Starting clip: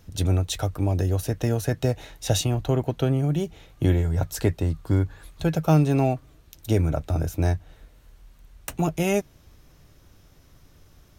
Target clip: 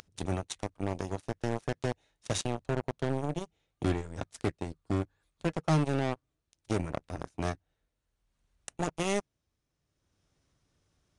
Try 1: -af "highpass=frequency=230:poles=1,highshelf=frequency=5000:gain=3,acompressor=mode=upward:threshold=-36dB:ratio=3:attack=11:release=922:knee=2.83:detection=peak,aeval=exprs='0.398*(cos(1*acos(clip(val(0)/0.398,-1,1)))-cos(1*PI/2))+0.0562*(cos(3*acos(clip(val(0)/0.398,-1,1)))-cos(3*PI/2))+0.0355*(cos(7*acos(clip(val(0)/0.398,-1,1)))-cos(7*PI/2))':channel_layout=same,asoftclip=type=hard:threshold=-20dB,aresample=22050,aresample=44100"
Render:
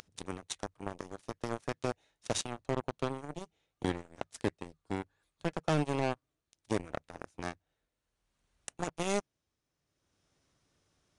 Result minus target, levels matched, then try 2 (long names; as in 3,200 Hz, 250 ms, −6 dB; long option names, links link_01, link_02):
125 Hz band −4.0 dB
-af "highpass=frequency=81:poles=1,highshelf=frequency=5000:gain=3,acompressor=mode=upward:threshold=-36dB:ratio=3:attack=11:release=922:knee=2.83:detection=peak,aeval=exprs='0.398*(cos(1*acos(clip(val(0)/0.398,-1,1)))-cos(1*PI/2))+0.0562*(cos(3*acos(clip(val(0)/0.398,-1,1)))-cos(3*PI/2))+0.0355*(cos(7*acos(clip(val(0)/0.398,-1,1)))-cos(7*PI/2))':channel_layout=same,asoftclip=type=hard:threshold=-20dB,aresample=22050,aresample=44100"